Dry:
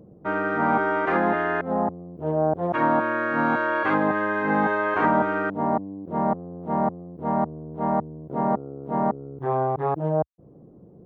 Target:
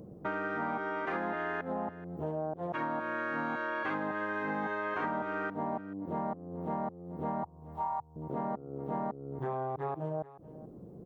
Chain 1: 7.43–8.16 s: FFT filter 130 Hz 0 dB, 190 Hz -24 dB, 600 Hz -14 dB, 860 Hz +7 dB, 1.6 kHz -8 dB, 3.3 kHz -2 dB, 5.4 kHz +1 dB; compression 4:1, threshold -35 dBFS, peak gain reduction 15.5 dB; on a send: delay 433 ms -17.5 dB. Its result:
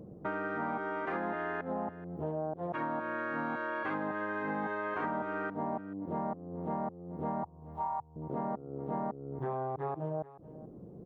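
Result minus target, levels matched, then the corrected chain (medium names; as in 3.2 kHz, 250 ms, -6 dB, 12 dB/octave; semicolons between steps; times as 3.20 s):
4 kHz band -3.5 dB
7.43–8.16 s: FFT filter 130 Hz 0 dB, 190 Hz -24 dB, 600 Hz -14 dB, 860 Hz +7 dB, 1.6 kHz -8 dB, 3.3 kHz -2 dB, 5.4 kHz +1 dB; compression 4:1, threshold -35 dBFS, peak gain reduction 15.5 dB; treble shelf 2.8 kHz +8 dB; on a send: delay 433 ms -17.5 dB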